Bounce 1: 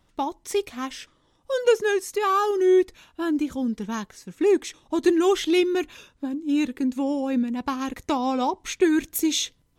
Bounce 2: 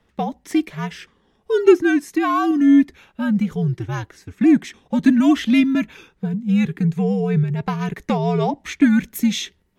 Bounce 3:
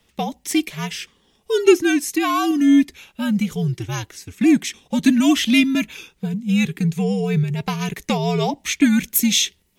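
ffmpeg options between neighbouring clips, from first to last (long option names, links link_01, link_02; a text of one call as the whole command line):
ffmpeg -i in.wav -af "equalizer=frequency=250:width_type=o:width=1:gain=6,equalizer=frequency=500:width_type=o:width=1:gain=8,equalizer=frequency=2000:width_type=o:width=1:gain=8,equalizer=frequency=8000:width_type=o:width=1:gain=-3,afreqshift=-90,volume=-2dB" out.wav
ffmpeg -i in.wav -af "aexciter=amount=3.2:drive=5.3:freq=2300,volume=-1dB" out.wav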